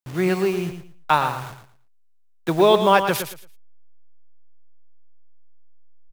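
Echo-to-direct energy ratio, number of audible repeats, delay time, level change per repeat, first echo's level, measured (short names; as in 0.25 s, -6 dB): -9.0 dB, 2, 0.113 s, -13.0 dB, -9.0 dB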